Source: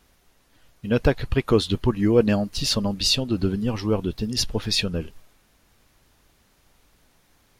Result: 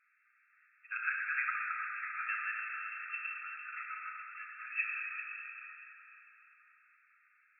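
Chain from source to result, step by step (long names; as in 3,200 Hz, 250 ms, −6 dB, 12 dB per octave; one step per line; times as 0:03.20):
delay that plays each chunk backwards 200 ms, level −3 dB
dense smooth reverb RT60 4.5 s, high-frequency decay 0.65×, DRR −2.5 dB
brick-wall band-pass 1,200–2,700 Hz
level −4.5 dB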